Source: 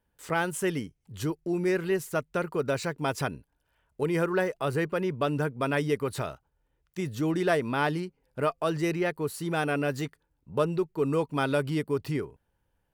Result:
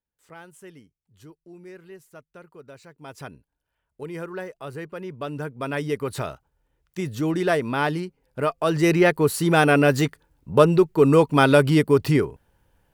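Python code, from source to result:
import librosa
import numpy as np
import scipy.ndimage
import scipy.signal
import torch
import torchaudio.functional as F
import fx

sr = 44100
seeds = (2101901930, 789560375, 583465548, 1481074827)

y = fx.gain(x, sr, db=fx.line((2.88, -16.5), (3.29, -7.0), (4.88, -7.0), (6.25, 3.5), (8.54, 3.5), (8.97, 11.0)))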